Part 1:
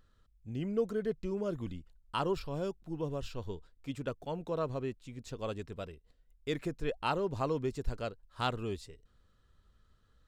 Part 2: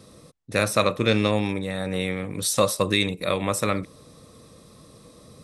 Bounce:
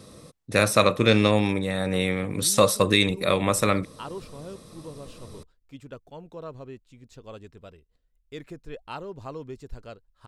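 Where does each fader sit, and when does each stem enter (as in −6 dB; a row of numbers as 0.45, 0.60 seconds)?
−4.5, +2.0 decibels; 1.85, 0.00 seconds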